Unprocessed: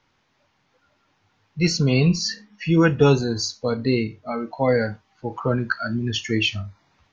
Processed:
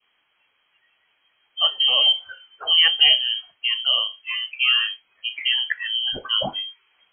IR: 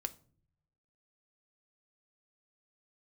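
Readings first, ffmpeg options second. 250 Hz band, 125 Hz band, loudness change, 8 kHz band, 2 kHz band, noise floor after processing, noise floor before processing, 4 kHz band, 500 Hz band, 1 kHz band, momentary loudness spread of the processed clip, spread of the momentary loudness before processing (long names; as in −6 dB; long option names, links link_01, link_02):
below −25 dB, below −25 dB, +3.0 dB, can't be measured, +3.0 dB, −68 dBFS, −67 dBFS, +14.0 dB, −16.0 dB, −5.0 dB, 15 LU, 13 LU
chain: -af "adynamicequalizer=threshold=0.0126:dfrequency=1600:dqfactor=1.3:tfrequency=1600:tqfactor=1.3:attack=5:release=100:ratio=0.375:range=2:mode=cutabove:tftype=bell,lowpass=frequency=2800:width_type=q:width=0.5098,lowpass=frequency=2800:width_type=q:width=0.6013,lowpass=frequency=2800:width_type=q:width=0.9,lowpass=frequency=2800:width_type=q:width=2.563,afreqshift=-3300"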